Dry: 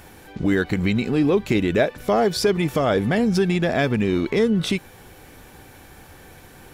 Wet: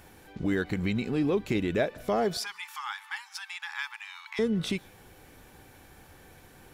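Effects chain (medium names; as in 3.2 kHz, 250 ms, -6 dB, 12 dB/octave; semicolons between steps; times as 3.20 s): 2.37–4.39 s: brick-wall FIR high-pass 790 Hz; reverberation RT60 0.30 s, pre-delay 115 ms, DRR 26.5 dB; trim -8 dB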